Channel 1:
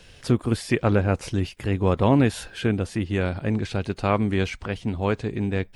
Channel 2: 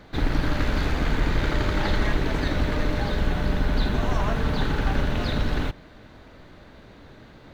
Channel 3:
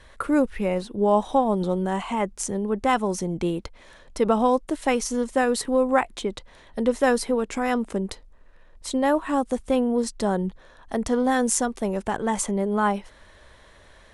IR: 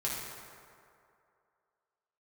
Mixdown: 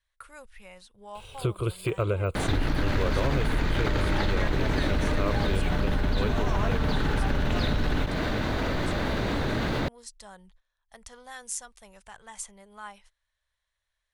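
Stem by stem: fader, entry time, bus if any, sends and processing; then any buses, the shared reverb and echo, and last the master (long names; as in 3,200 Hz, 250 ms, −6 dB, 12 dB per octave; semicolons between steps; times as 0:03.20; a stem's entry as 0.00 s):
+2.5 dB, 1.15 s, no send, de-essing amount 90%; high-shelf EQ 8,100 Hz +8 dB; phaser with its sweep stopped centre 1,200 Hz, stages 8
+2.5 dB, 2.35 s, no send, envelope flattener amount 70%
−9.0 dB, 0.00 s, no send, noise gate −37 dBFS, range −16 dB; guitar amp tone stack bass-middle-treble 10-0-10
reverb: not used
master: downward compressor 2.5 to 1, threshold −25 dBFS, peak gain reduction 9.5 dB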